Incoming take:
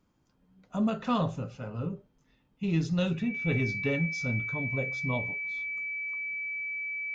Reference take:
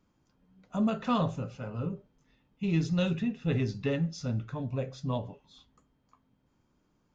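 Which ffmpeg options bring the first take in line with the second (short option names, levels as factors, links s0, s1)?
-af "bandreject=f=2300:w=30"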